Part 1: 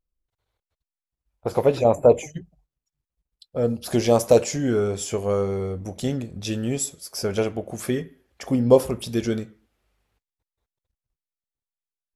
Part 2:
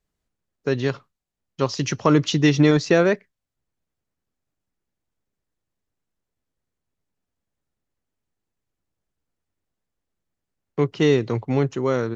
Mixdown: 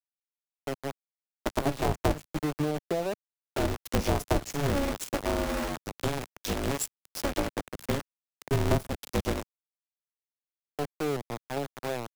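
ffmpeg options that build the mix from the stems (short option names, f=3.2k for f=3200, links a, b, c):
-filter_complex "[0:a]aeval=exprs='val(0)*sgn(sin(2*PI*140*n/s))':c=same,volume=-2dB,asplit=2[a][b];[1:a]lowpass=f=760:t=q:w=4.8,volume=-12.5dB[c];[b]apad=whole_len=536088[d];[c][d]sidechaincompress=threshold=-23dB:ratio=8:attack=25:release=183[e];[a][e]amix=inputs=2:normalize=0,aeval=exprs='val(0)*gte(abs(val(0)),0.0422)':c=same,acrossover=split=170[f][g];[g]acompressor=threshold=-26dB:ratio=6[h];[f][h]amix=inputs=2:normalize=0"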